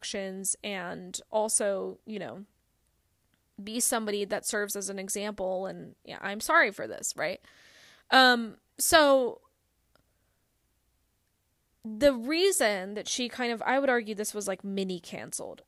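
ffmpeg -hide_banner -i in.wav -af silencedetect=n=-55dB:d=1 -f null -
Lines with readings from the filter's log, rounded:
silence_start: 9.99
silence_end: 11.84 | silence_duration: 1.84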